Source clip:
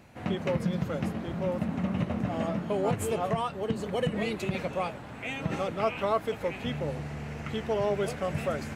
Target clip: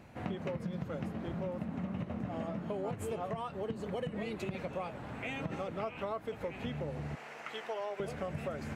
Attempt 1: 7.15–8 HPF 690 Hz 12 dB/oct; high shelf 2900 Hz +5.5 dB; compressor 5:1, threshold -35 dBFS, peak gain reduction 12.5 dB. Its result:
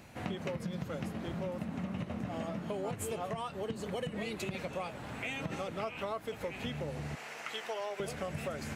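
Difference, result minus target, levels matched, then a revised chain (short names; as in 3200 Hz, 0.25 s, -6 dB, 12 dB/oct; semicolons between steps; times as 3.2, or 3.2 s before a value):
8000 Hz band +9.0 dB
7.15–8 HPF 690 Hz 12 dB/oct; high shelf 2900 Hz -6 dB; compressor 5:1, threshold -35 dBFS, peak gain reduction 12 dB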